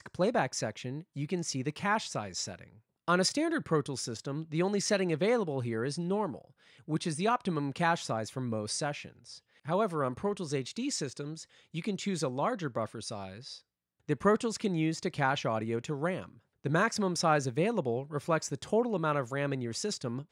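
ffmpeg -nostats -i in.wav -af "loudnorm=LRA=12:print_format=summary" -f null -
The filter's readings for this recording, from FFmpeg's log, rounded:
Input Integrated:    -32.2 LUFS
Input True Peak:     -13.5 dBTP
Input LRA:             3.8 LU
Input Threshold:     -42.5 LUFS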